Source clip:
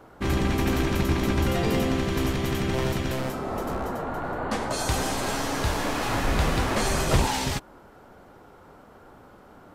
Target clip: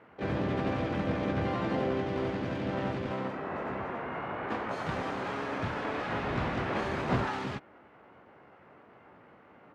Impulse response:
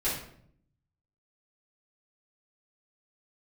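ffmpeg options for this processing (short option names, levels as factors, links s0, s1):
-filter_complex "[0:a]asplit=3[s0][s1][s2];[s1]asetrate=66075,aresample=44100,atempo=0.66742,volume=0.891[s3];[s2]asetrate=88200,aresample=44100,atempo=0.5,volume=0.562[s4];[s0][s3][s4]amix=inputs=3:normalize=0,highpass=110,lowpass=2300,volume=0.376"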